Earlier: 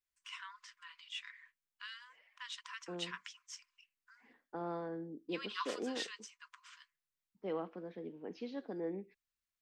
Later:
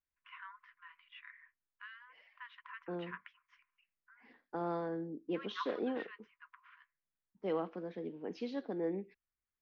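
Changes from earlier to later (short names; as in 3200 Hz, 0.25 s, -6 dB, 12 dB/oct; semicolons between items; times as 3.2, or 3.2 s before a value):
first voice: add LPF 2100 Hz 24 dB/oct; second voice +3.5 dB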